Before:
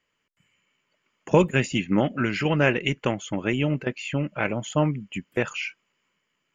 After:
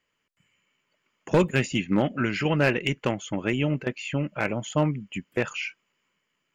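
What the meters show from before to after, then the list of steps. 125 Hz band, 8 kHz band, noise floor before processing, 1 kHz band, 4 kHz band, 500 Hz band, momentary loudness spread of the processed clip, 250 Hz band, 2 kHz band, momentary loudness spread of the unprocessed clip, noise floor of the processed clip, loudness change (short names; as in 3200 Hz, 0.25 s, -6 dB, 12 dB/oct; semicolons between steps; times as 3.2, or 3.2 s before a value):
-1.0 dB, n/a, -77 dBFS, -2.0 dB, -1.0 dB, -1.5 dB, 7 LU, -1.0 dB, -1.5 dB, 8 LU, -78 dBFS, -1.5 dB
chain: hard clip -12.5 dBFS, distortion -19 dB; gain -1 dB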